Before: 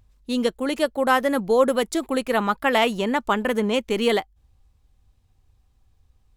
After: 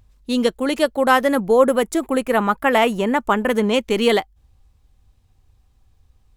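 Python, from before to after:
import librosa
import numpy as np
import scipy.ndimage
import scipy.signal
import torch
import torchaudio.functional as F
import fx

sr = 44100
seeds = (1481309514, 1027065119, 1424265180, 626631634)

y = fx.peak_eq(x, sr, hz=4200.0, db=-8.5, octaves=1.0, at=(1.35, 3.5))
y = y * 10.0 ** (4.0 / 20.0)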